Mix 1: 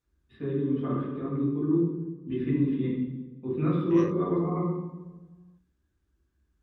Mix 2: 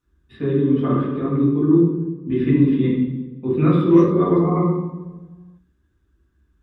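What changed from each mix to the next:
first voice +10.0 dB
master: add high-shelf EQ 4,800 Hz +5 dB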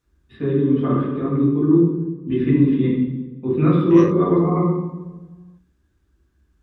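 second voice +9.0 dB
master: add high-shelf EQ 4,800 Hz −5 dB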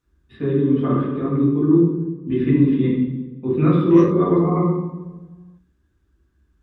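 second voice −3.5 dB

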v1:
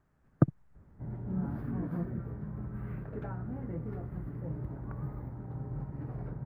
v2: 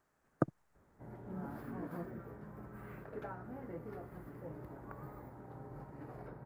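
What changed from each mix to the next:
master: add bass and treble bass −15 dB, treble +8 dB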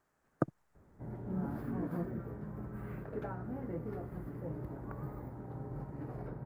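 background: add low-shelf EQ 420 Hz +9 dB

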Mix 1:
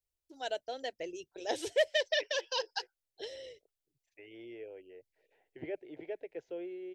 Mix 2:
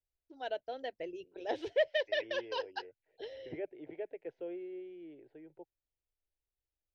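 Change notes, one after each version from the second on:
second voice: entry −2.10 s
master: add high-frequency loss of the air 290 metres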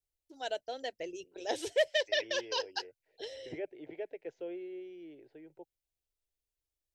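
master: remove high-frequency loss of the air 290 metres

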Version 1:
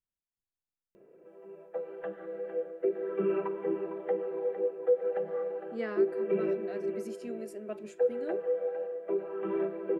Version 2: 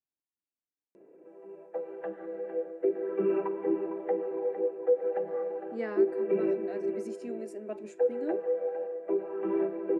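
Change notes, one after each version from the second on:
master: add loudspeaker in its box 180–9,800 Hz, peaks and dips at 300 Hz +9 dB, 850 Hz +5 dB, 1,300 Hz −4 dB, 3,200 Hz −7 dB, 4,700 Hz −3 dB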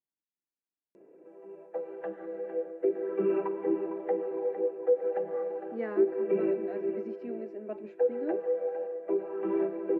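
speech: add Gaussian smoothing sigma 2.7 samples

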